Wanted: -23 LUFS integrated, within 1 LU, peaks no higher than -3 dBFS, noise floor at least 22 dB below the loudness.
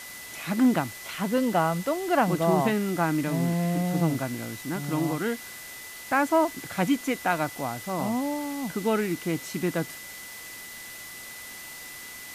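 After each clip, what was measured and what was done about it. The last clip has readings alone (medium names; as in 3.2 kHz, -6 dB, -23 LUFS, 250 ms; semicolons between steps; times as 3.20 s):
steady tone 2 kHz; tone level -43 dBFS; noise floor -42 dBFS; noise floor target -49 dBFS; loudness -27.0 LUFS; peak level -10.5 dBFS; loudness target -23.0 LUFS
-> band-stop 2 kHz, Q 30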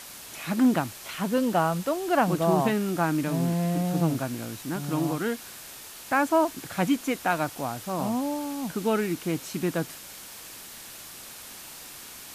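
steady tone not found; noise floor -44 dBFS; noise floor target -49 dBFS
-> noise reduction 6 dB, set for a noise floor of -44 dBFS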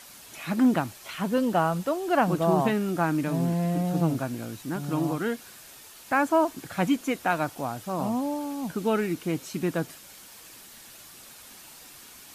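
noise floor -48 dBFS; noise floor target -49 dBFS
-> noise reduction 6 dB, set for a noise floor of -48 dBFS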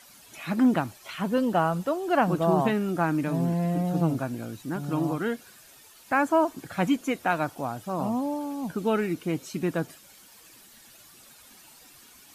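noise floor -53 dBFS; loudness -27.0 LUFS; peak level -10.5 dBFS; loudness target -23.0 LUFS
-> trim +4 dB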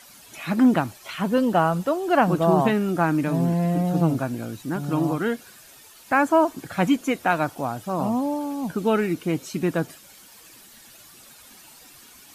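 loudness -23.0 LUFS; peak level -6.5 dBFS; noise floor -49 dBFS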